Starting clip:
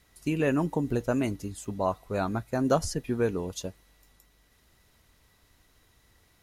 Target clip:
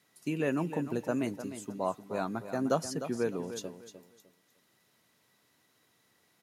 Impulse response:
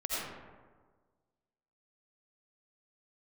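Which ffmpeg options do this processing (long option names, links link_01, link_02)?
-filter_complex "[0:a]highpass=frequency=140:width=0.5412,highpass=frequency=140:width=1.3066,asplit=2[link_01][link_02];[link_02]aecho=0:1:303|606|909:0.282|0.0733|0.0191[link_03];[link_01][link_03]amix=inputs=2:normalize=0,volume=-4.5dB"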